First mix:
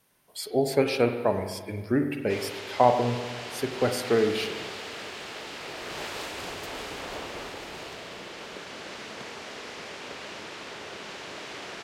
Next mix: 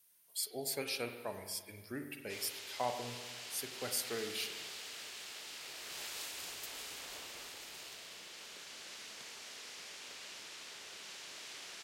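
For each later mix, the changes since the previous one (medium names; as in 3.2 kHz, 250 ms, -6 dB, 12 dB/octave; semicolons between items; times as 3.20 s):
master: add pre-emphasis filter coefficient 0.9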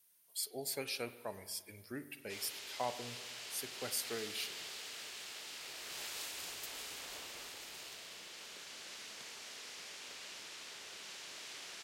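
speech: send -7.5 dB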